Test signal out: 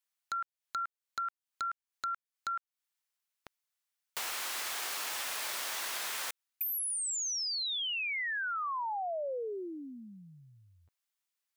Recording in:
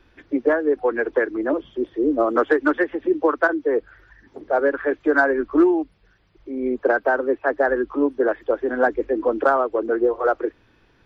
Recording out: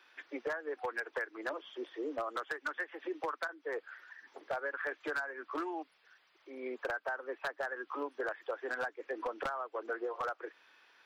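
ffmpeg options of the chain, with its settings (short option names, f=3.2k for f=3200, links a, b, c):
-af "highpass=960,acompressor=threshold=-33dB:ratio=20,aeval=exprs='0.0398*(abs(mod(val(0)/0.0398+3,4)-2)-1)':c=same"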